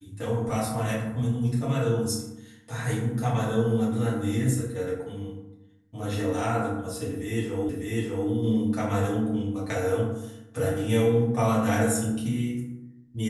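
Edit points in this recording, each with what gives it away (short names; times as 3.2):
7.69 repeat of the last 0.6 s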